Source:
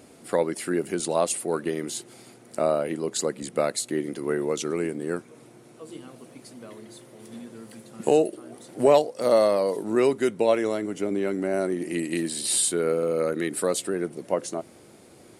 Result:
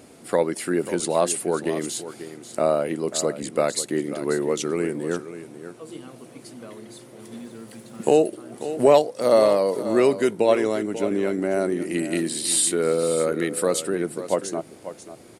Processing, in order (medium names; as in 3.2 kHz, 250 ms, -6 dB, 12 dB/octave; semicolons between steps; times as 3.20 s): 7.36–8.21 s: crackle 300 per s -49 dBFS; delay 540 ms -12.5 dB; trim +2.5 dB